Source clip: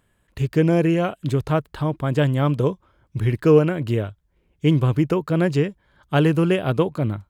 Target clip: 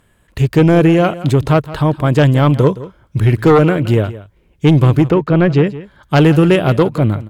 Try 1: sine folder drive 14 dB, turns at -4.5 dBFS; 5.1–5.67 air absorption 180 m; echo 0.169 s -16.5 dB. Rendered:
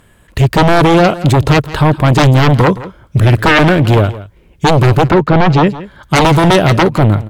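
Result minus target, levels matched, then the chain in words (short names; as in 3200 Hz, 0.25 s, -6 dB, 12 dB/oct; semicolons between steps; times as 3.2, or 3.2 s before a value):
sine folder: distortion +15 dB
sine folder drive 6 dB, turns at -4.5 dBFS; 5.1–5.67 air absorption 180 m; echo 0.169 s -16.5 dB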